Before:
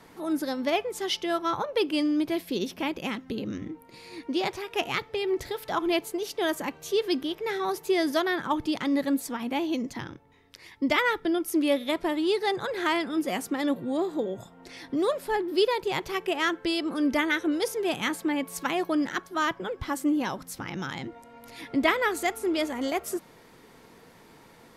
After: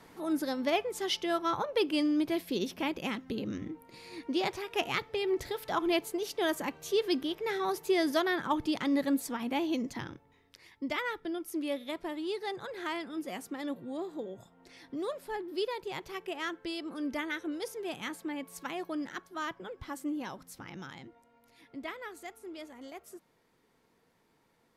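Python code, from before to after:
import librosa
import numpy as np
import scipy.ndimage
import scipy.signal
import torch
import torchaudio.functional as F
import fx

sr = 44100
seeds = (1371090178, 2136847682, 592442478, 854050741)

y = fx.gain(x, sr, db=fx.line((10.1, -3.0), (10.87, -10.0), (20.76, -10.0), (21.47, -17.5)))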